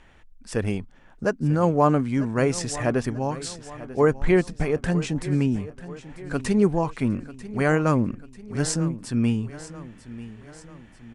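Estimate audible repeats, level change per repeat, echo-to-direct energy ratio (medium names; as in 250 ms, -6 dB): 4, -6.0 dB, -15.0 dB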